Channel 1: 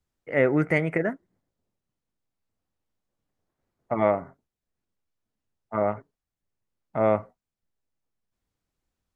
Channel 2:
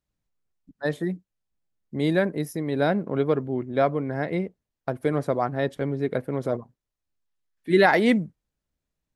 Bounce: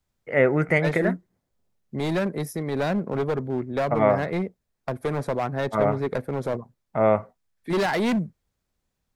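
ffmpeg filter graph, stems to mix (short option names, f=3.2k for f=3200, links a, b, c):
-filter_complex "[0:a]volume=2.5dB[a];[1:a]bandreject=f=2.9k:w=7.5,acrossover=split=320|3000[b][c][d];[c]acompressor=threshold=-23dB:ratio=3[e];[b][e][d]amix=inputs=3:normalize=0,volume=21.5dB,asoftclip=hard,volume=-21.5dB,volume=2dB[f];[a][f]amix=inputs=2:normalize=0,equalizer=f=300:w=6.3:g=-6"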